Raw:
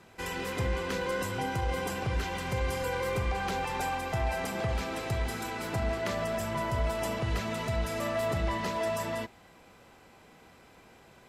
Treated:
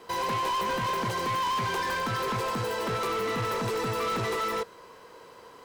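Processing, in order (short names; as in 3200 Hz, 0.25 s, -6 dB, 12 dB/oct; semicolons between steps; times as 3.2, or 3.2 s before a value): speed mistake 7.5 ips tape played at 15 ips; small resonant body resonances 480/1000 Hz, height 15 dB, ringing for 25 ms; overloaded stage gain 26.5 dB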